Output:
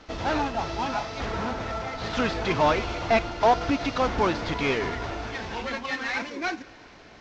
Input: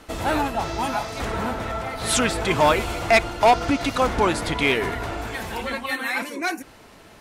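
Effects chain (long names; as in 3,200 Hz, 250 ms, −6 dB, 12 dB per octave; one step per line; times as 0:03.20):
variable-slope delta modulation 32 kbit/s
convolution reverb RT60 6.0 s, pre-delay 71 ms, DRR 20 dB
level −3 dB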